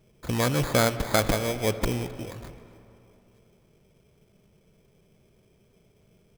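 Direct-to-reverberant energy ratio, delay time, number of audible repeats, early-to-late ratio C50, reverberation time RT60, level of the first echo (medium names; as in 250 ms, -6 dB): 11.5 dB, 262 ms, 1, 11.5 dB, 2.9 s, -21.5 dB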